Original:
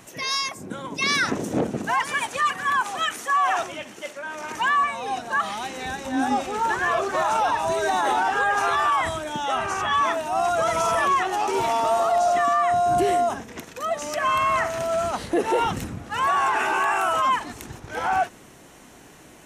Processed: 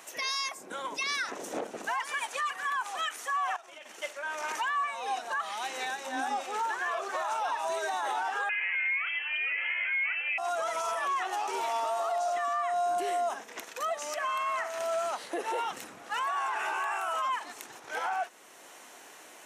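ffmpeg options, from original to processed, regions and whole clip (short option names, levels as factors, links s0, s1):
-filter_complex "[0:a]asettb=1/sr,asplit=3[s0][s1][s2];[s0]atrim=end=3.564[s3];[s1]atrim=start=3.56:end=4.02,asetpts=PTS-STARTPTS,afade=t=in:d=0.004:c=qsin,afade=t=out:st=0.456:d=0.004:c=qsin,tremolo=f=23:d=0.462,acompressor=threshold=0.0126:ratio=10:attack=3.2:release=140:knee=1:detection=peak[s4];[s2]atrim=start=4.016[s5];[s3][s4]acrossfade=d=0.004:c1=hsin:c2=qsin[s6];[s6][s5]acrossfade=d=0.004:c1=qsin:c2=hsin,asettb=1/sr,asplit=3[s7][s8][s9];[s7]atrim=end=8.494[s10];[s8]atrim=start=8.49:end=10.38,asetpts=PTS-STARTPTS,afade=t=in:d=0.004:c=qsin,afade=t=out:st=1.886:d=0.004:c=qsin,equalizer=f=1200:t=o:w=0.98:g=8.5,lowpass=f=2800:t=q:w=0.5098,lowpass=f=2800:t=q:w=0.6013,lowpass=f=2800:t=q:w=0.9,lowpass=f=2800:t=q:w=2.563,afreqshift=-3300[s11];[s9]atrim=start=10.376[s12];[s10][s11]acrossfade=d=0.004:c1=hsin:c2=qsin[s13];[s13][s12]acrossfade=d=0.004:c1=qsin:c2=hsin,highpass=560,alimiter=limit=0.0668:level=0:latency=1:release=445"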